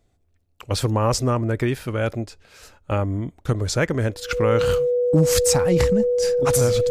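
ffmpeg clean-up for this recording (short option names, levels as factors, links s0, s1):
-af "bandreject=f=490:w=30"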